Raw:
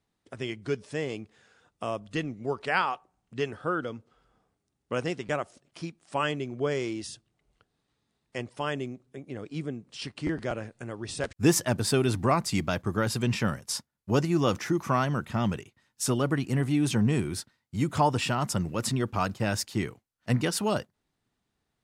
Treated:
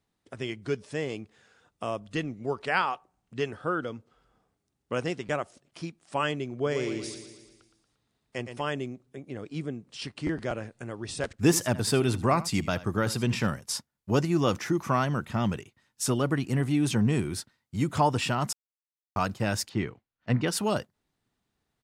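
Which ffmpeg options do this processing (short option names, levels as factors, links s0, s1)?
-filter_complex "[0:a]asettb=1/sr,asplit=3[s0][s1][s2];[s0]atrim=end=6.544[s3];[s1]atrim=start=6.54:end=8.61,asetpts=PTS-STARTPTS,afade=t=in:d=0.004:c=qsin,afade=t=out:st=2.066:d=0.004:c=qsin,aecho=1:1:116|232|348|464|580|696|812:0.376|0.207|0.114|0.0625|0.0344|0.0189|0.0104,atrim=end_sample=91287[s4];[s2]atrim=start=8.606[s5];[s3][s4]acrossfade=d=0.004:c1=hsin:c2=qsin[s6];[s6][s5]acrossfade=d=0.004:c1=qsin:c2=hsin,asplit=3[s7][s8][s9];[s7]afade=t=out:st=11.33:d=0.02[s10];[s8]aecho=1:1:79:0.141,afade=t=in:st=11.33:d=0.02,afade=t=out:st=13.46:d=0.02[s11];[s9]afade=t=in:st=13.46:d=0.02[s12];[s10][s11][s12]amix=inputs=3:normalize=0,asettb=1/sr,asplit=3[s13][s14][s15];[s13]atrim=end=19.694[s16];[s14]atrim=start=19.69:end=20.48,asetpts=PTS-STARTPTS,afade=t=in:d=0.004:c=qsin,afade=t=out:st=0.786:d=0.004:c=qsin,lowpass=3500[s17];[s15]atrim=start=20.476[s18];[s16][s17]acrossfade=d=0.004:c1=hsin:c2=qsin[s19];[s19][s18]acrossfade=d=0.004:c1=qsin:c2=hsin,asplit=3[s20][s21][s22];[s20]atrim=end=18.53,asetpts=PTS-STARTPTS,afade=t=out:st=18.526:d=0.004:c=hsin[s23];[s21]atrim=start=18.53:end=19.16,asetpts=PTS-STARTPTS,volume=0[s24];[s22]atrim=start=19.16,asetpts=PTS-STARTPTS,afade=t=in:d=0.004:c=hsin[s25];[s23][s24][s25]concat=n=3:v=0:a=1"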